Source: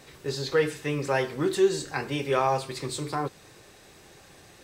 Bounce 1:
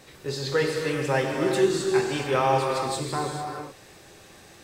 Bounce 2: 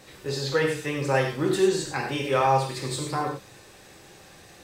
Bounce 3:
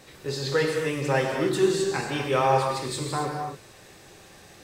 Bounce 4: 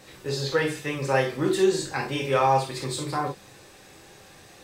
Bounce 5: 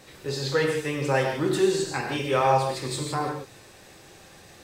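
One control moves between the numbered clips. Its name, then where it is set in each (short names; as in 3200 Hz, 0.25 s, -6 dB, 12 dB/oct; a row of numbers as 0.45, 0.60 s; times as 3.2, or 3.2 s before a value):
non-linear reverb, gate: 470, 130, 300, 80, 190 ms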